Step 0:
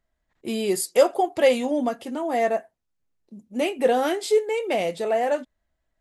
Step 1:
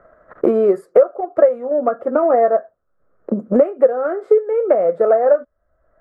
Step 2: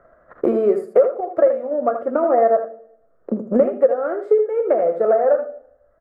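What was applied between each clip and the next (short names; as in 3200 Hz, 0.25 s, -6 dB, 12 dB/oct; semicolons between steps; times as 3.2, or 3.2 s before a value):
EQ curve 280 Hz 0 dB, 570 Hz +15 dB, 900 Hz -1 dB, 1300 Hz +15 dB, 2800 Hz -24 dB, 4000 Hz -29 dB; transient shaper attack +7 dB, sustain +1 dB; three-band squash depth 100%; gain -6.5 dB
echo 79 ms -8.5 dB; on a send at -14.5 dB: reverb RT60 0.85 s, pre-delay 3 ms; on the sum: gain -3 dB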